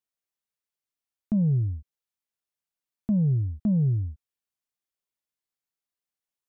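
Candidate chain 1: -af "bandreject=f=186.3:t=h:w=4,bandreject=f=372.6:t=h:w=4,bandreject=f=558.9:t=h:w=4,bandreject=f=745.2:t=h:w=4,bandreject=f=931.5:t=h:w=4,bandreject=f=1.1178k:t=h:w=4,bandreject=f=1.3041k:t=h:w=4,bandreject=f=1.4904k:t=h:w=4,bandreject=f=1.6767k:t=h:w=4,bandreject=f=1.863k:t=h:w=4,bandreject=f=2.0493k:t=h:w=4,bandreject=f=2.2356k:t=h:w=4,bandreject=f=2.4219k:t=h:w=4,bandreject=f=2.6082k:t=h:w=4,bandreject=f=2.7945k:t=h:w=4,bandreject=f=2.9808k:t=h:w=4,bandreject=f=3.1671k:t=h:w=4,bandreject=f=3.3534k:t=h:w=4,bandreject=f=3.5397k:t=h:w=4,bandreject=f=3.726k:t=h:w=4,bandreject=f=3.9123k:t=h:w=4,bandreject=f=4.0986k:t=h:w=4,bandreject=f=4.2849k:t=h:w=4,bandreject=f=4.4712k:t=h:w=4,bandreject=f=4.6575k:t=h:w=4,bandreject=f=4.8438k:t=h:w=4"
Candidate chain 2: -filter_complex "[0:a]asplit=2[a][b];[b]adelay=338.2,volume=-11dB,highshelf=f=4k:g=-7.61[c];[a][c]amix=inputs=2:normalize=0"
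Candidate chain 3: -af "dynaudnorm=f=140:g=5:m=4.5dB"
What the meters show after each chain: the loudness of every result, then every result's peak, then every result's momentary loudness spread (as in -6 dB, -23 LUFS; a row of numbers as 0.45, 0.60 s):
-26.0, -26.0, -21.0 LUFS; -16.5, -17.0, -14.5 dBFS; 12, 15, 13 LU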